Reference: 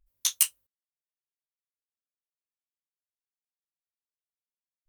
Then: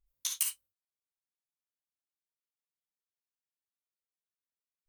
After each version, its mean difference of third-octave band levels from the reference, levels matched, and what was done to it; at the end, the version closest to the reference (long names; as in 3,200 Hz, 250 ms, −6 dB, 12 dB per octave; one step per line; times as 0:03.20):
4.5 dB: reverb whose tail is shaped and stops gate 80 ms rising, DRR 3 dB
level −8.5 dB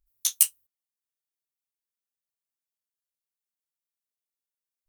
2.5 dB: high-shelf EQ 5,600 Hz +10.5 dB
level −5.5 dB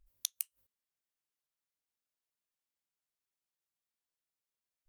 7.5 dB: gate with flip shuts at −14 dBFS, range −37 dB
level +1.5 dB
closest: second